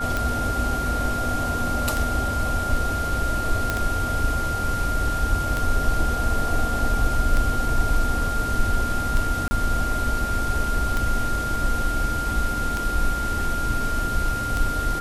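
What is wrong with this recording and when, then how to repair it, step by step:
tick 33 1/3 rpm
whine 1.4 kHz -26 dBFS
3.70 s: pop -8 dBFS
9.48–9.51 s: dropout 30 ms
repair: de-click; band-stop 1.4 kHz, Q 30; interpolate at 9.48 s, 30 ms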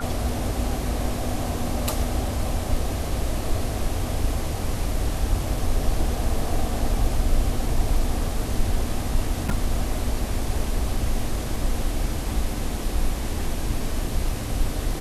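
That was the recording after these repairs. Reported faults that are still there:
nothing left

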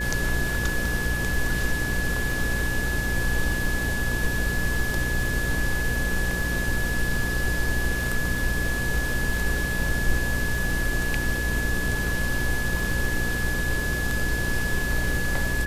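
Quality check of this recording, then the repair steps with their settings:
buzz 60 Hz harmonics 9 -30 dBFS
crackle 28 per s -31 dBFS
whine 1.7 kHz -28 dBFS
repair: de-click; de-hum 60 Hz, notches 9; band-stop 1.7 kHz, Q 30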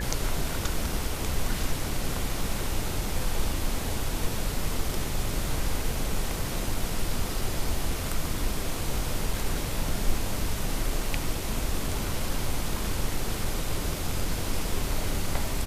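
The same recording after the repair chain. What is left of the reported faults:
nothing left

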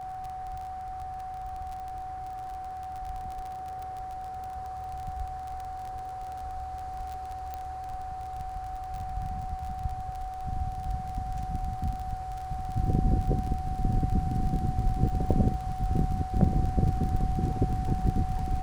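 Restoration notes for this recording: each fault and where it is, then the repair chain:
crackle 30 per s -34 dBFS
whine 750 Hz -35 dBFS
7.54 s: pop -23 dBFS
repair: de-click; band-stop 750 Hz, Q 30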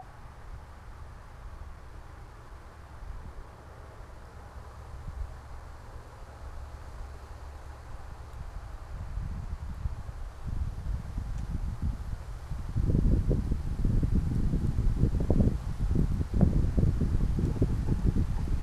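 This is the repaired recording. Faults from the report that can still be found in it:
nothing left

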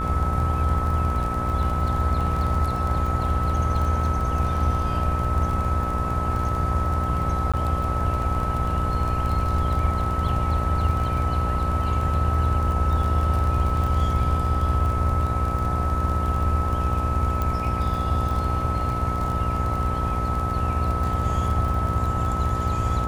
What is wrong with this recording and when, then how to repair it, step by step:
buzz 60 Hz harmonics 20 -28 dBFS
crackle 31 per s -28 dBFS
whine 1.3 kHz -27 dBFS
7.52–7.54 s: dropout 16 ms
17.42 s: pop -13 dBFS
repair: de-click; de-hum 60 Hz, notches 20; band-stop 1.3 kHz, Q 30; interpolate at 7.52 s, 16 ms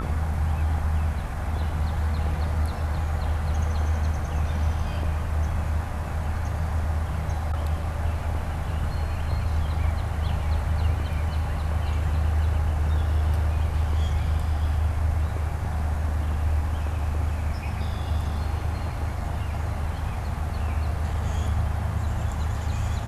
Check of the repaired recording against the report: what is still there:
nothing left

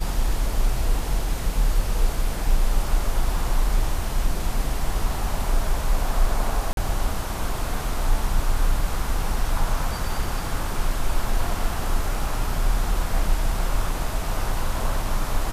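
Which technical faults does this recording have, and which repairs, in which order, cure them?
6.73–6.77 s: dropout 42 ms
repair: interpolate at 6.73 s, 42 ms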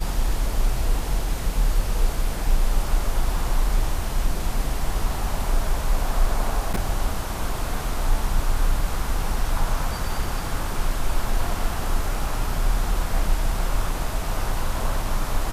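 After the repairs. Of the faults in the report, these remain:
nothing left

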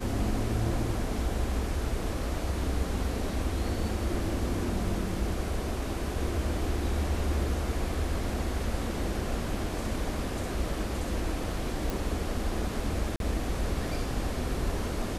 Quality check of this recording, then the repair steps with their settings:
11.90 s: pop
13.16–13.20 s: dropout 42 ms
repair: de-click; interpolate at 13.16 s, 42 ms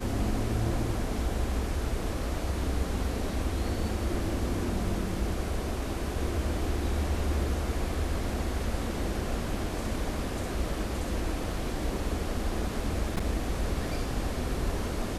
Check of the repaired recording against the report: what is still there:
nothing left

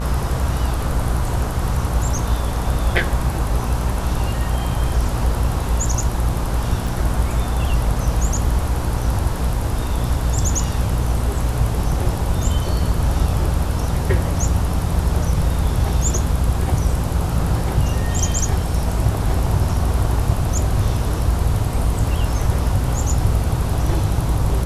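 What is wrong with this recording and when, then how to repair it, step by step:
buzz 60 Hz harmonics 27 -23 dBFS
6.87 s: dropout 3.8 ms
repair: de-hum 60 Hz, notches 27; interpolate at 6.87 s, 3.8 ms

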